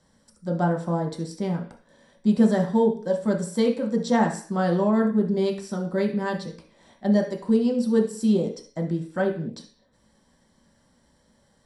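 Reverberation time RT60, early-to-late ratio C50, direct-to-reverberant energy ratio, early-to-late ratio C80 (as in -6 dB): 0.45 s, 9.0 dB, -0.5 dB, 14.5 dB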